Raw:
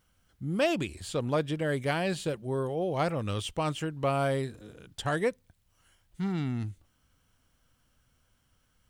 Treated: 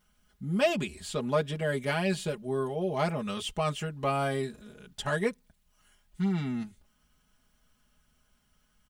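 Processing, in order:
notch filter 430 Hz, Q 12
comb filter 4.8 ms, depth 95%
level −2 dB

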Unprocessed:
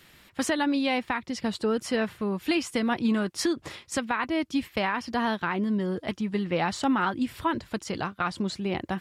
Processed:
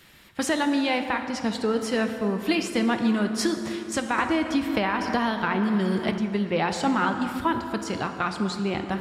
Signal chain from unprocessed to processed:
dense smooth reverb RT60 3 s, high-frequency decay 0.5×, DRR 6 dB
0:04.18–0:06.18: multiband upward and downward compressor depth 100%
level +1.5 dB

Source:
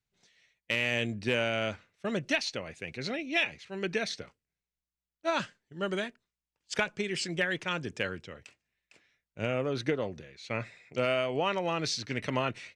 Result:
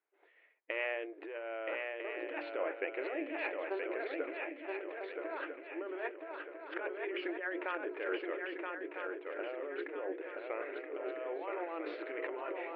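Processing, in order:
Bessel low-pass filter 1,400 Hz, order 8
mains-hum notches 60/120/180/240/300/360/420/480/540 Hz
compressor whose output falls as the input rises −40 dBFS, ratio −1
linear-phase brick-wall high-pass 290 Hz
feedback echo with a long and a short gap by turns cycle 1,299 ms, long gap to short 3 to 1, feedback 42%, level −4 dB
level +2 dB

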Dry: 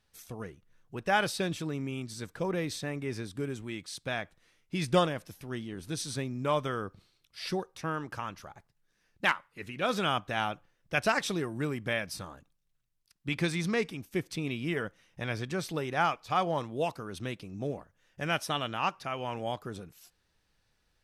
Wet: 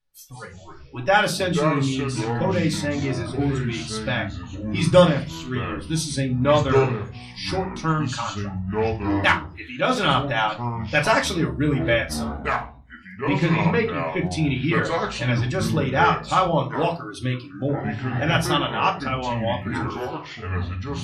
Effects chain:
0:13.28–0:14.22: low-pass filter 2,100 Hz → 4,400 Hz 12 dB per octave
noise reduction from a noise print of the clip's start 20 dB
convolution reverb RT60 0.30 s, pre-delay 3 ms, DRR 0 dB
delay with pitch and tempo change per echo 119 ms, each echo −5 semitones, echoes 3, each echo −6 dB
level +5.5 dB

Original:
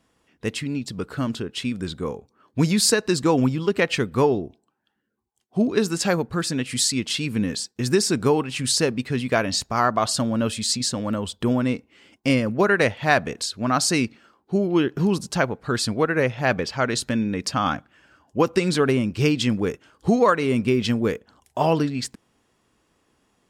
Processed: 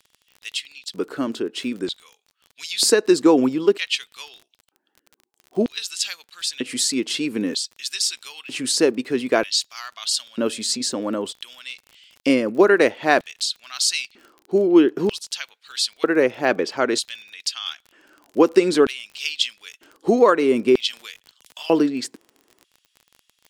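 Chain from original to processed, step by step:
auto-filter high-pass square 0.53 Hz 330–3,300 Hz
surface crackle 32 per second −34 dBFS
0:20.93–0:21.65: multiband upward and downward compressor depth 70%

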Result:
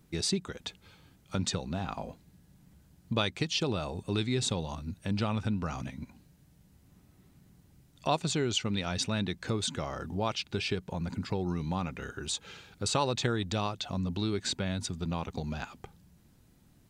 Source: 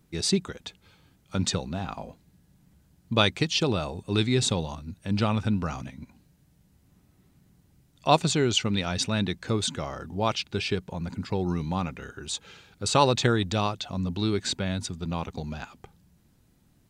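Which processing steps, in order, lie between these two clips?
downward compressor 2 to 1, threshold −33 dBFS, peak gain reduction 10.5 dB
level +1 dB

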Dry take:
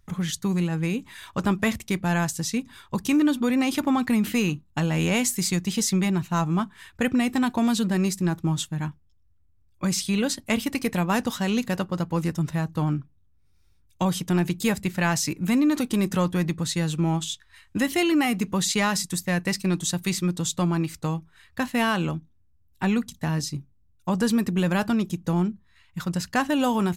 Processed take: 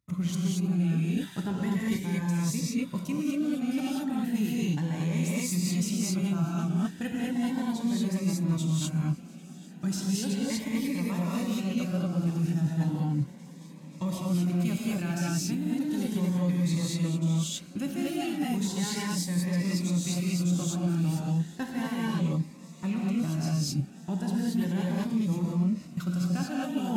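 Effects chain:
gain on one half-wave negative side −3 dB
high-pass filter 150 Hz 12 dB per octave
reverb whose tail is shaped and stops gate 260 ms rising, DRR −6 dB
reversed playback
downward compressor 6 to 1, threshold −31 dBFS, peak gain reduction 19.5 dB
reversed playback
noise gate −46 dBFS, range −15 dB
low-shelf EQ 200 Hz +11 dB
notch filter 470 Hz, Q 12
feedback echo with a long and a short gap by turns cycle 1,333 ms, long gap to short 1.5 to 1, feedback 80%, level −23.5 dB
phaser whose notches keep moving one way rising 0.35 Hz

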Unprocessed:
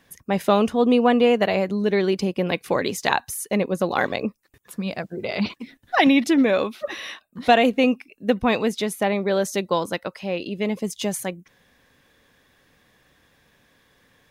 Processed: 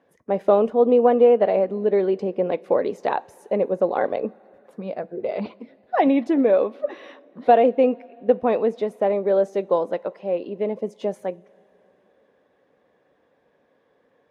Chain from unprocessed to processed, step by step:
resonant band-pass 520 Hz, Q 1.6
coupled-rooms reverb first 0.25 s, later 3.7 s, from −18 dB, DRR 17.5 dB
level +4.5 dB
Ogg Vorbis 64 kbit/s 48,000 Hz

